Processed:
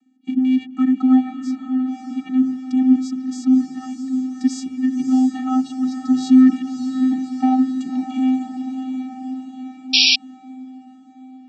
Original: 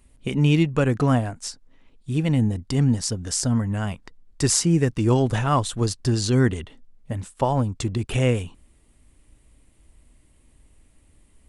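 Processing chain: 6.09–7.55 s: waveshaping leveller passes 2; vocoder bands 16, square 258 Hz; echo that smears into a reverb 583 ms, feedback 61%, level -7 dB; 9.93–10.16 s: painted sound noise 2.3–5.7 kHz -17 dBFS; trim +3.5 dB

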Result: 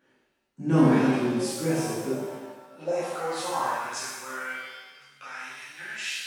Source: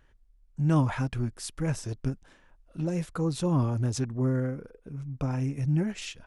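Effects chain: high-pass sweep 270 Hz -> 1.6 kHz, 1.54–4.69 s; pitch-shifted reverb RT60 1.2 s, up +7 st, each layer -8 dB, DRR -10.5 dB; trim -6 dB

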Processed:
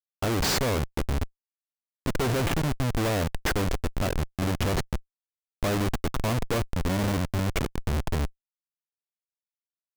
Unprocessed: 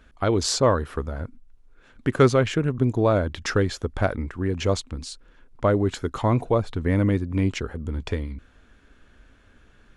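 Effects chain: Schmitt trigger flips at -25.5 dBFS

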